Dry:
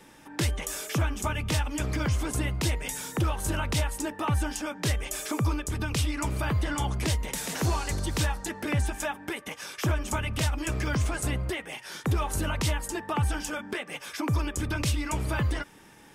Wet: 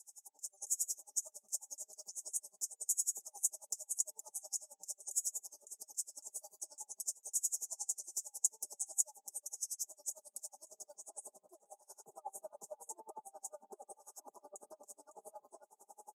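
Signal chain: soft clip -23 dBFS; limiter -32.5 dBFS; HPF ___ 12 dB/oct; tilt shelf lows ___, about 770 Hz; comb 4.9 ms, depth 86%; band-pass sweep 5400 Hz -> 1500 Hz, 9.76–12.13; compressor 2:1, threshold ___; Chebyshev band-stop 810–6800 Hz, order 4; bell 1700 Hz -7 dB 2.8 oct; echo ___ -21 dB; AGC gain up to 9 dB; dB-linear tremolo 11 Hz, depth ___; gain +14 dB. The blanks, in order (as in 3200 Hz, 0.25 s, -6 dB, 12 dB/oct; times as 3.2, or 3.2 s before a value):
500 Hz, -6 dB, -50 dBFS, 0.93 s, 32 dB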